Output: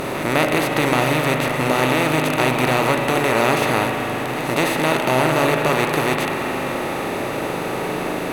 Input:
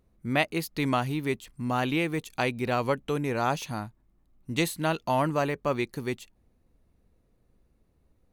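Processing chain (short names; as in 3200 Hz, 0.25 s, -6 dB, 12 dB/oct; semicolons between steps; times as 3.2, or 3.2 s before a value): per-bin compression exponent 0.2; pre-echo 0.202 s -12.5 dB; spring tank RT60 3.7 s, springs 39 ms, chirp 60 ms, DRR 2.5 dB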